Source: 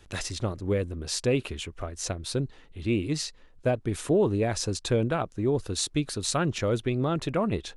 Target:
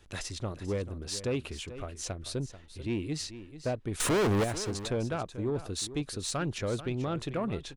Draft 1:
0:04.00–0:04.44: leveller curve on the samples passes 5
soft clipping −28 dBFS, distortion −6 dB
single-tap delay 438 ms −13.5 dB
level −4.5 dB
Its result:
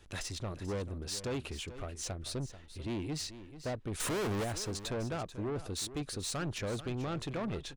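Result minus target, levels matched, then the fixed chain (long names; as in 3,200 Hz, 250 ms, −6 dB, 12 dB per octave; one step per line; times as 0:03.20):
soft clipping: distortion +9 dB
0:04.00–0:04.44: leveller curve on the samples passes 5
soft clipping −19 dBFS, distortion −15 dB
single-tap delay 438 ms −13.5 dB
level −4.5 dB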